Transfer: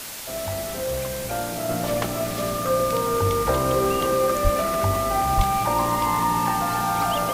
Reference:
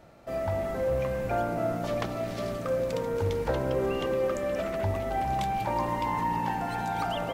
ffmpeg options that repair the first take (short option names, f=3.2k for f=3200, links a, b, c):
-filter_complex "[0:a]bandreject=f=1.2k:w=30,asplit=3[a][b][c];[a]afade=t=out:st=4.43:d=0.02[d];[b]highpass=f=140:w=0.5412,highpass=f=140:w=1.3066,afade=t=in:st=4.43:d=0.02,afade=t=out:st=4.55:d=0.02[e];[c]afade=t=in:st=4.55:d=0.02[f];[d][e][f]amix=inputs=3:normalize=0,asplit=3[g][h][i];[g]afade=t=out:st=5.36:d=0.02[j];[h]highpass=f=140:w=0.5412,highpass=f=140:w=1.3066,afade=t=in:st=5.36:d=0.02,afade=t=out:st=5.48:d=0.02[k];[i]afade=t=in:st=5.48:d=0.02[l];[j][k][l]amix=inputs=3:normalize=0,afwtdn=0.02,asetnsamples=n=441:p=0,asendcmd='1.69 volume volume -5.5dB',volume=0dB"